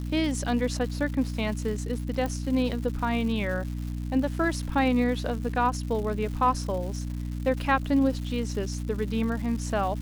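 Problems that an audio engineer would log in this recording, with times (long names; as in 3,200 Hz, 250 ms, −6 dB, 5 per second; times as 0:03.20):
surface crackle 310 per second −36 dBFS
mains hum 60 Hz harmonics 5 −32 dBFS
0:02.26: click −18 dBFS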